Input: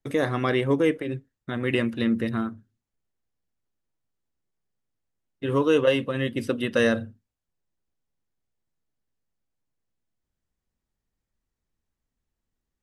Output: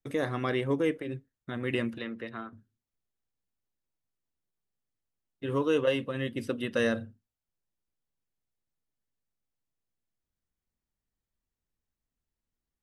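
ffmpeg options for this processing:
-filter_complex "[0:a]asettb=1/sr,asplit=3[a][b][c];[a]atrim=end=1.984[d];[b]atrim=start=1.98:end=2.53,asetpts=PTS-STARTPTS,afade=t=in:d=0.004:c=qsin,afade=t=out:st=0.546:d=0.004:c=qsin,acrossover=split=410 4400:gain=0.224 1 0.158[e][f][g];[e][f][g]amix=inputs=3:normalize=0[h];[c]atrim=start=2.526[i];[d][h]acrossfade=d=0.004:c1=hsin:c2=qsin[j];[j][i]acrossfade=d=0.004:c1=qsin:c2=hsin,volume=-6dB"

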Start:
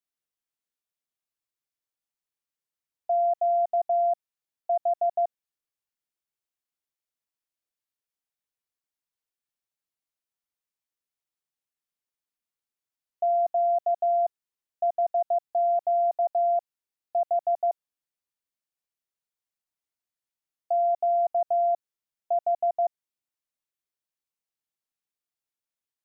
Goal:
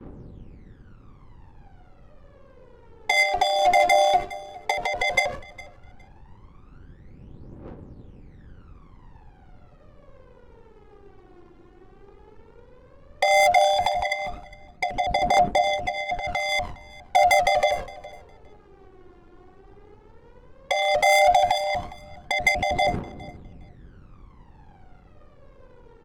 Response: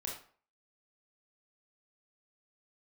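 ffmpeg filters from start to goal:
-filter_complex "[0:a]aeval=exprs='val(0)+0.5*0.02*sgn(val(0))':c=same,agate=range=-33dB:threshold=-32dB:ratio=3:detection=peak,lowshelf=f=460:g=6,acompressor=threshold=-26dB:ratio=10,asettb=1/sr,asplit=3[a][b][c];[a]atrim=end=13.934[d];[b]atrim=start=13.93:end=16.28,asetpts=PTS-STARTPTS,afade=t=in:d=0.004:c=qsin,afade=t=out:st=2.346:d=0.004:c=qsin,flanger=delay=1.3:depth=4.3:regen=41:speed=1.7:shape=sinusoidal[e];[c]atrim=start=16.276[f];[d][e]acrossfade=d=0.004:c1=hsin:c2=qsin[g];[g][f]acrossfade=d=0.004:c1=qsin:c2=hsin,asoftclip=type=hard:threshold=-26.5dB,aphaser=in_gain=1:out_gain=1:delay=2.9:decay=0.78:speed=0.13:type=triangular,adynamicsmooth=sensitivity=7:basefreq=510,tremolo=f=93:d=0.4,asuperstop=centerf=660:order=20:qfactor=6.8,aecho=1:1:410|820:0.0841|0.0143,alimiter=level_in=29dB:limit=-1dB:release=50:level=0:latency=1,volume=-8dB"

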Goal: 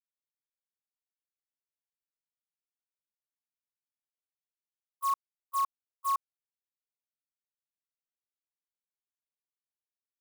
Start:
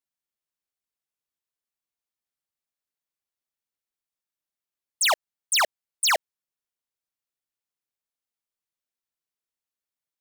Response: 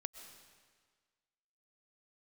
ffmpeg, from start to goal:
-af "aeval=exprs='abs(val(0))':c=same,aeval=exprs='val(0)*sin(2*PI*1100*n/s)':c=same,agate=range=-38dB:threshold=-24dB:ratio=16:detection=peak,volume=-3dB"

